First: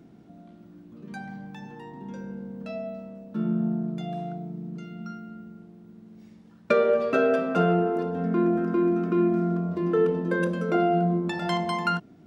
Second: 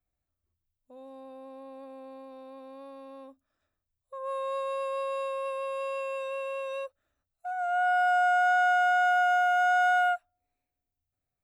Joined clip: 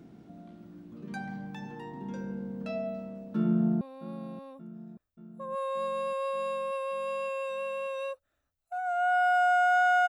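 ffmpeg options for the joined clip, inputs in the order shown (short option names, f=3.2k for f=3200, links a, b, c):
-filter_complex "[0:a]apad=whole_dur=10.08,atrim=end=10.08,atrim=end=3.812[a];[1:a]atrim=start=2.538:end=8.81[b];[a][b]acrossfade=d=0.004:c1=hsin:c2=hsin,asplit=2[c][d];[d]afade=t=in:st=3.43:d=0.01,afade=t=out:st=3.81:d=0.01,aecho=0:1:580|1160|1740|2320|2900|3480|4060:0.16788|0.109122|0.0709295|0.0461042|0.0299677|0.019479|0.0126614[e];[c][e]amix=inputs=2:normalize=0"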